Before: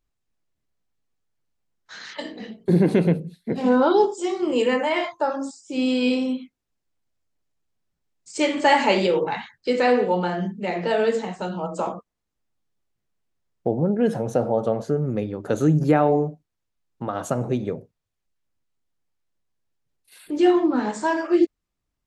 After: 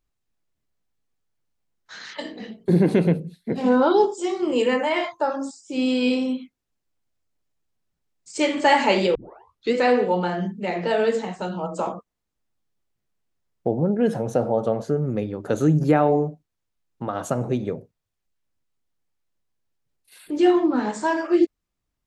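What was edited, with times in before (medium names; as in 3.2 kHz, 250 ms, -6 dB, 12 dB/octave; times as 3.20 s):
9.15 s: tape start 0.59 s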